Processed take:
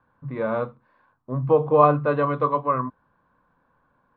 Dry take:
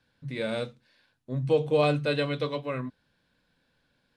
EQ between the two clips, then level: resonant low-pass 1.1 kHz, resonance Q 6.2; +3.5 dB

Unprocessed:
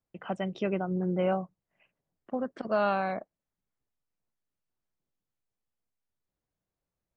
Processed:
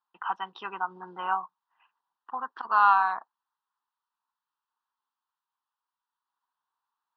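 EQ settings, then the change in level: resonant high-pass 950 Hz, resonance Q 4.9; distance through air 150 m; static phaser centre 2.2 kHz, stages 6; +6.0 dB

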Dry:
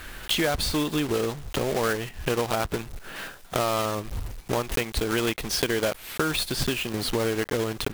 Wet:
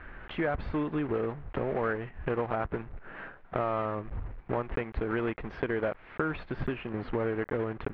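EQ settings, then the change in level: low-pass 2 kHz 24 dB/octave; -4.5 dB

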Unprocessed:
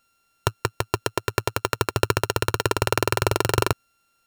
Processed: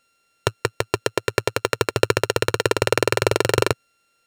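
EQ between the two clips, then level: graphic EQ 125/250/500/2000/4000/8000 Hz +5/+4/+12/+10/+6/+7 dB; -6.0 dB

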